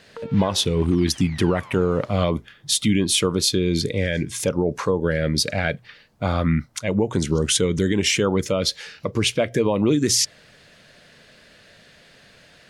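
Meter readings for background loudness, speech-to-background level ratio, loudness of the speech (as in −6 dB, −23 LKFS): −41.5 LKFS, 20.0 dB, −21.5 LKFS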